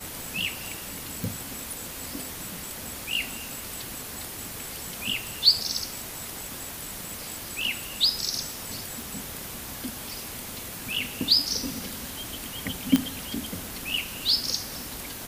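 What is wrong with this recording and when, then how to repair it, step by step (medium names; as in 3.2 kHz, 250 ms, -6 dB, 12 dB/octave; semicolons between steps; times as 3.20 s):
crackle 23 per s -38 dBFS
1.24 s: pop
9.02 s: pop
12.96 s: pop -6 dBFS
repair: de-click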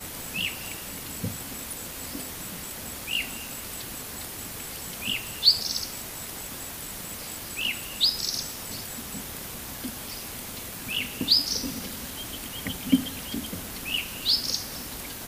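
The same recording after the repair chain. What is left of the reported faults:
nothing left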